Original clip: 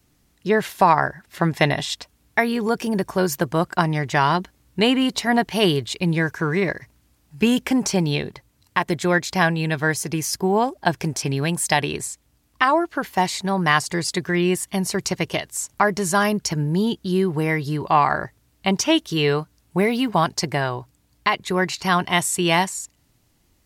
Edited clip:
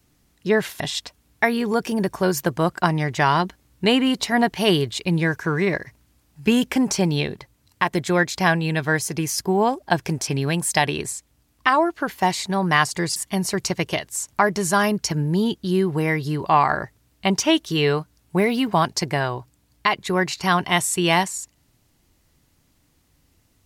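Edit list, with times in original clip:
0.8–1.75 cut
14.11–14.57 cut

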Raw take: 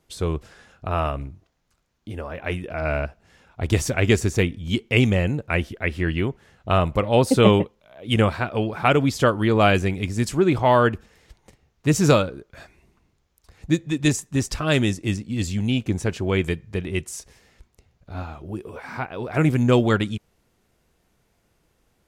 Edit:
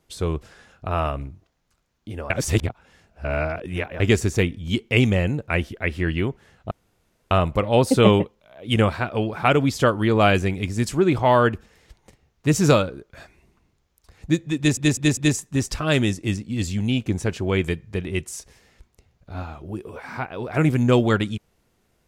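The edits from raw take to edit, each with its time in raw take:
2.3–4 reverse
6.71 insert room tone 0.60 s
13.97 stutter 0.20 s, 4 plays

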